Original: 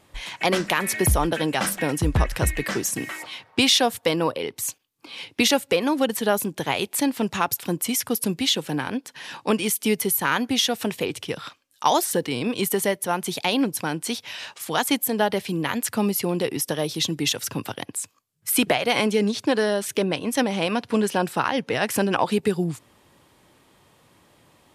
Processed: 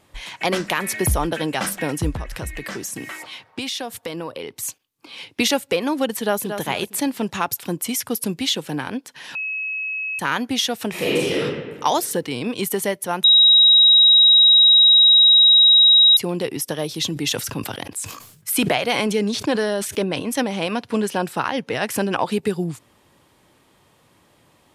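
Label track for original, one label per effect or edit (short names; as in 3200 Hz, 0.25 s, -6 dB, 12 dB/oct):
2.130000	4.630000	compressor 3:1, threshold -27 dBFS
6.190000	6.610000	echo throw 0.23 s, feedback 25%, level -8 dB
9.350000	10.190000	bleep 2570 Hz -23.5 dBFS
10.900000	11.390000	reverb throw, RT60 1.5 s, DRR -8.5 dB
13.240000	16.170000	bleep 3820 Hz -8.5 dBFS
16.890000	20.340000	sustainer at most 66 dB/s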